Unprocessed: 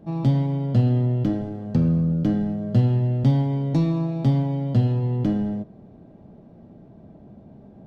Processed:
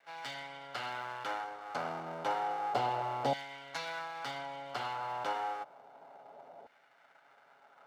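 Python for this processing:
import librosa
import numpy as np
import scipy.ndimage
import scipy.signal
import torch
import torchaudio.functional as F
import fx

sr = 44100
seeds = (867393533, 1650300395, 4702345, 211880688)

y = fx.lower_of_two(x, sr, delay_ms=7.2)
y = fx.filter_lfo_highpass(y, sr, shape='saw_down', hz=0.3, low_hz=660.0, high_hz=1800.0, q=1.7)
y = y + 0.4 * np.pad(y, (int(1.4 * sr / 1000.0), 0))[:len(y)]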